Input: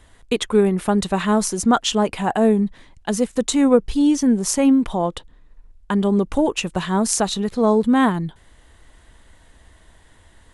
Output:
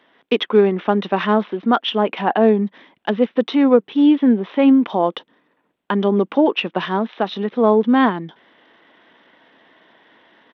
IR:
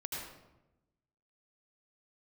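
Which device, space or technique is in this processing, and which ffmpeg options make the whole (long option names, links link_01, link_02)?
Bluetooth headset: -af "highpass=frequency=220:width=0.5412,highpass=frequency=220:width=1.3066,dynaudnorm=framelen=140:gausssize=3:maxgain=4.5dB,aresample=8000,aresample=44100" -ar 32000 -c:a sbc -b:a 64k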